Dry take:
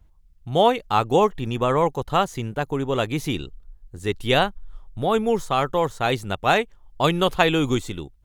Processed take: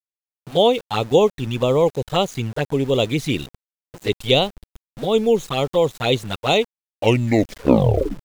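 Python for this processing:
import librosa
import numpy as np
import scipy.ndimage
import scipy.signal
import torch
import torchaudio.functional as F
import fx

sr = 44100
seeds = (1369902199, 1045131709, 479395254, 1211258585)

p1 = fx.tape_stop_end(x, sr, length_s=1.48)
p2 = fx.graphic_eq(p1, sr, hz=(125, 250, 500, 2000, 4000, 8000), db=(7, 5, 10, 7, 10, 8))
p3 = fx.rider(p2, sr, range_db=4, speed_s=0.5)
p4 = p2 + F.gain(torch.from_numpy(p3), -2.0).numpy()
p5 = fx.env_flanger(p4, sr, rest_ms=9.4, full_db=-4.5)
p6 = np.where(np.abs(p5) >= 10.0 ** (-25.5 / 20.0), p5, 0.0)
y = F.gain(torch.from_numpy(p6), -9.5).numpy()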